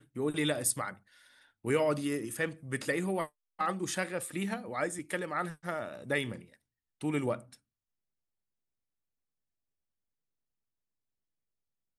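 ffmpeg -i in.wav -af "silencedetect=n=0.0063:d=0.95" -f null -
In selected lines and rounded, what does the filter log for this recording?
silence_start: 7.54
silence_end: 11.98 | silence_duration: 4.44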